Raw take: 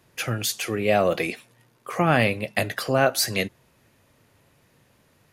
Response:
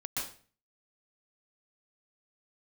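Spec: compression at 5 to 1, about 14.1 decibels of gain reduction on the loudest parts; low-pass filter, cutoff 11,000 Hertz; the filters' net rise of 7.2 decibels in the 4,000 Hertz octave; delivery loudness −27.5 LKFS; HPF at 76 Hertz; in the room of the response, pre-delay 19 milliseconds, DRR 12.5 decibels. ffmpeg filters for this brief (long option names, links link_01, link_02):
-filter_complex "[0:a]highpass=76,lowpass=11000,equalizer=frequency=4000:width_type=o:gain=9,acompressor=threshold=-30dB:ratio=5,asplit=2[link_01][link_02];[1:a]atrim=start_sample=2205,adelay=19[link_03];[link_02][link_03]afir=irnorm=-1:irlink=0,volume=-16dB[link_04];[link_01][link_04]amix=inputs=2:normalize=0,volume=5.5dB"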